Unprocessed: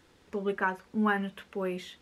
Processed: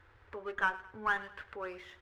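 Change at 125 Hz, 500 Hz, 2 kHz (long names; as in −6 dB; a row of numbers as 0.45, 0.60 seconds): −17.0, −9.5, 0.0 decibels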